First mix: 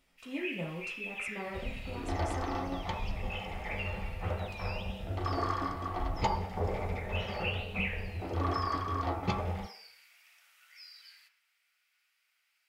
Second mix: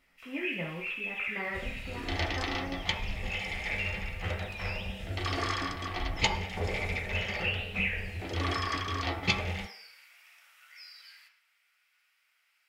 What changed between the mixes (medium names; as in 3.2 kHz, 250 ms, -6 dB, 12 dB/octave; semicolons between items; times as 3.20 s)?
speech: add resonant low-pass 2.1 kHz, resonance Q 4.4; first sound: send +7.0 dB; second sound: add resonant high shelf 1.6 kHz +12 dB, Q 1.5